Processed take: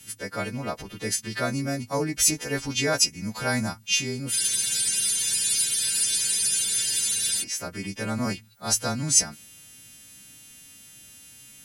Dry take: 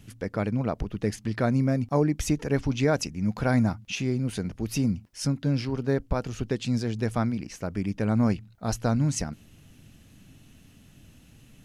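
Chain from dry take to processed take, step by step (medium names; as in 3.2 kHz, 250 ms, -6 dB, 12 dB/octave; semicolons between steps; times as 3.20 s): partials quantised in pitch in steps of 2 st; tilt EQ +2 dB/octave; spectral freeze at 4.34 s, 3.08 s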